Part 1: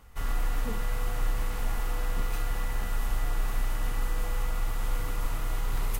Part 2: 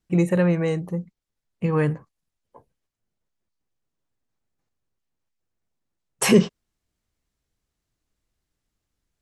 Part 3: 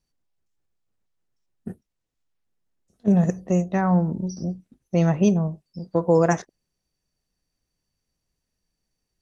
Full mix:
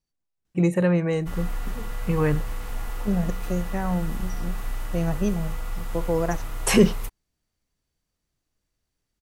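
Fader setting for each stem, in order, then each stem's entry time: -1.5 dB, -1.0 dB, -6.5 dB; 1.10 s, 0.45 s, 0.00 s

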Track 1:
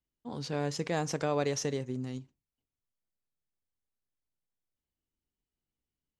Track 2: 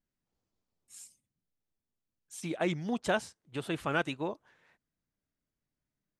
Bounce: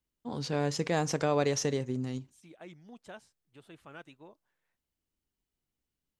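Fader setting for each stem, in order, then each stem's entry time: +2.5 dB, -18.0 dB; 0.00 s, 0.00 s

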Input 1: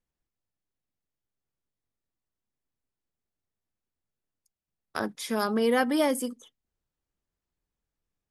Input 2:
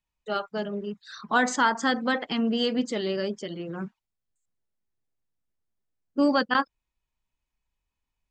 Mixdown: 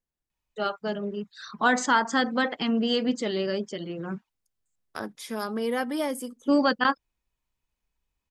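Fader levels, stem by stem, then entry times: -4.0 dB, +0.5 dB; 0.00 s, 0.30 s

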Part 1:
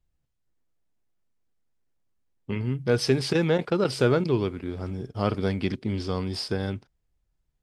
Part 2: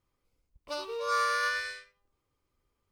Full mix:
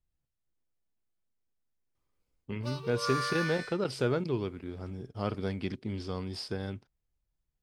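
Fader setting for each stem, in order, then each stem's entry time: -7.5 dB, -5.0 dB; 0.00 s, 1.95 s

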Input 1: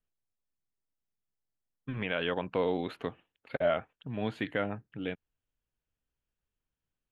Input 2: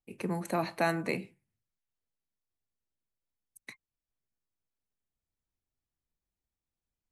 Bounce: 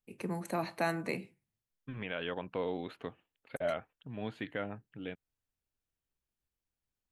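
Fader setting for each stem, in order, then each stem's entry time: -6.0 dB, -3.5 dB; 0.00 s, 0.00 s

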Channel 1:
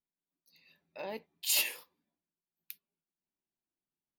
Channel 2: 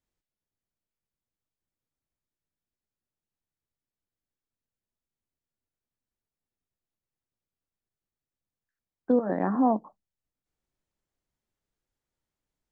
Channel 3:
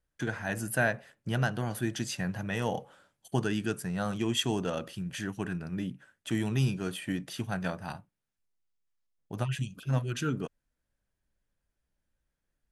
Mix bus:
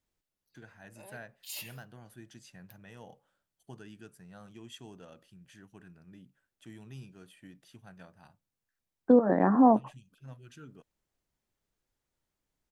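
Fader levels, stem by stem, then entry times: -12.5 dB, +2.5 dB, -19.0 dB; 0.00 s, 0.00 s, 0.35 s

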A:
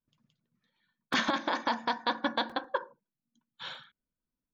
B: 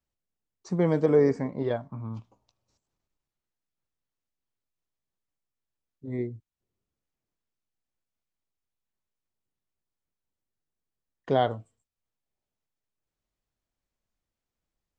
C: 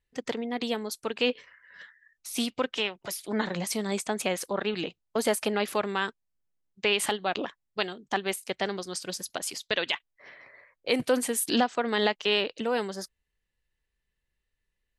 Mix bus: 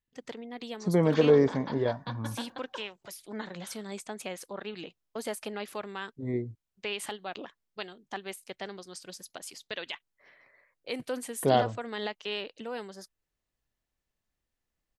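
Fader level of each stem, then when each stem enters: -11.0 dB, 0.0 dB, -9.5 dB; 0.00 s, 0.15 s, 0.00 s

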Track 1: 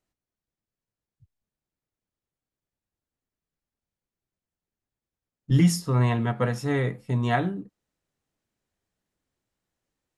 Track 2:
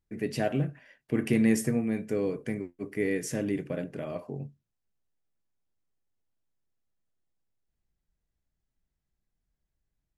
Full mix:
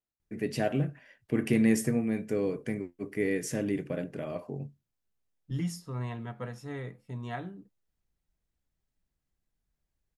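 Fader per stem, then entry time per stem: -13.5 dB, -0.5 dB; 0.00 s, 0.20 s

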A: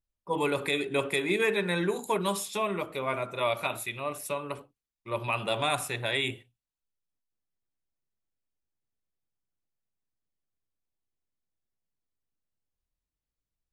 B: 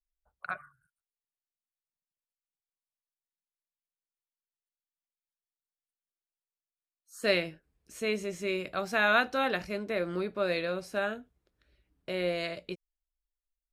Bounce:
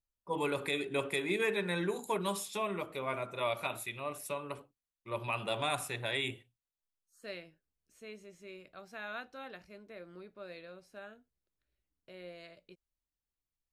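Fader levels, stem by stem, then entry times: -5.5 dB, -17.5 dB; 0.00 s, 0.00 s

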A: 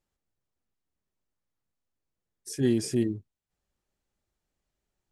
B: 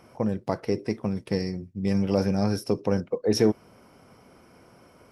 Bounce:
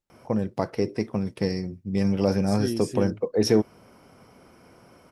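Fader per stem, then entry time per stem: -4.5 dB, +1.0 dB; 0.00 s, 0.10 s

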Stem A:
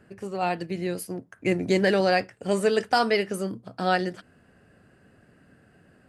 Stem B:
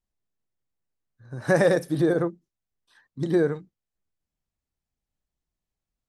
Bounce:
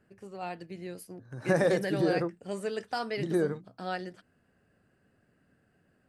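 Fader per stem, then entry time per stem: -11.5 dB, -6.0 dB; 0.00 s, 0.00 s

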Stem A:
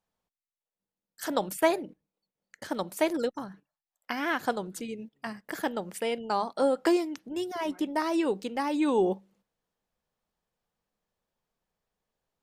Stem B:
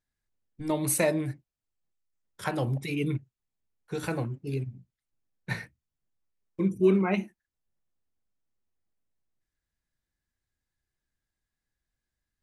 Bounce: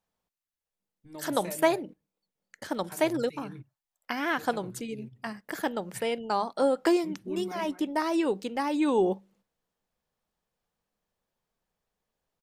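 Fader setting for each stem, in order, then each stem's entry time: +0.5 dB, -15.5 dB; 0.00 s, 0.45 s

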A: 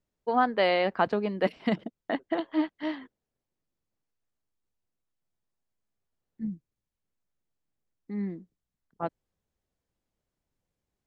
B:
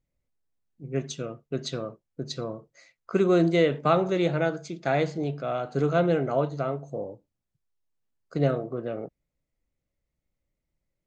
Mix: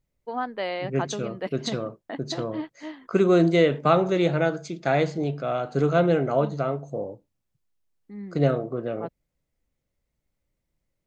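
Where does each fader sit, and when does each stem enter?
-5.5 dB, +2.5 dB; 0.00 s, 0.00 s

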